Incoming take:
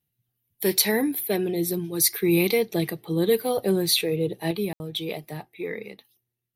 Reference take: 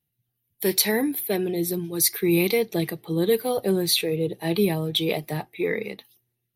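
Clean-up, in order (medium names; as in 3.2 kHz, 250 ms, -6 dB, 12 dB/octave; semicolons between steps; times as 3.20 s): room tone fill 4.73–4.80 s; gain correction +6.5 dB, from 4.51 s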